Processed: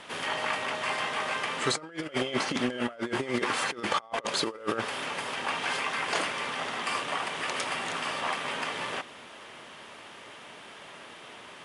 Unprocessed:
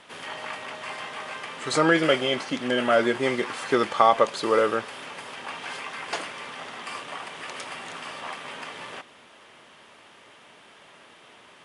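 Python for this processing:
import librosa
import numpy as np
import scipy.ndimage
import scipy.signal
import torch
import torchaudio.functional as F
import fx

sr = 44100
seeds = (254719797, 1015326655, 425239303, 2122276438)

y = fx.over_compress(x, sr, threshold_db=-29.0, ratio=-0.5)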